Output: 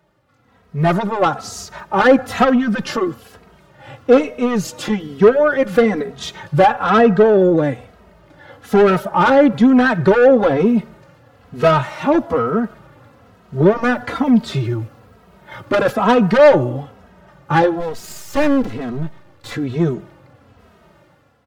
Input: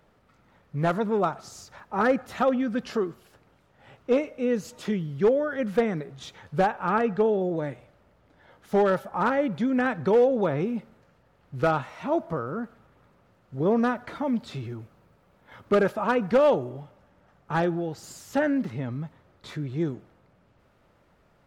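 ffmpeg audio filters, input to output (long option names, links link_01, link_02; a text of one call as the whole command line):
ffmpeg -i in.wav -filter_complex "[0:a]highpass=frequency=48:width=0.5412,highpass=frequency=48:width=1.3066,asoftclip=type=tanh:threshold=-20.5dB,dynaudnorm=framelen=300:gausssize=5:maxgain=13dB,asplit=3[link_01][link_02][link_03];[link_01]afade=type=out:start_time=17.79:duration=0.02[link_04];[link_02]aeval=exprs='max(val(0),0)':channel_layout=same,afade=type=in:start_time=17.79:duration=0.02,afade=type=out:start_time=19.5:duration=0.02[link_05];[link_03]afade=type=in:start_time=19.5:duration=0.02[link_06];[link_04][link_05][link_06]amix=inputs=3:normalize=0,bandreject=frequency=2300:width=30,asplit=2[link_07][link_08];[link_08]adelay=2.8,afreqshift=-1.1[link_09];[link_07][link_09]amix=inputs=2:normalize=1,volume=4dB" out.wav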